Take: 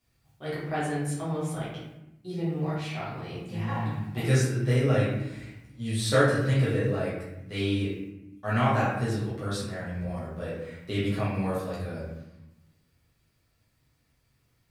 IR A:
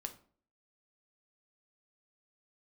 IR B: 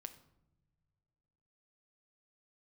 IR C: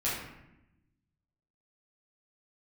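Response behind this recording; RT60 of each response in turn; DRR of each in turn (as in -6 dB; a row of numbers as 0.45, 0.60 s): C; 0.50 s, not exponential, 0.90 s; 5.5, 8.5, -9.5 dB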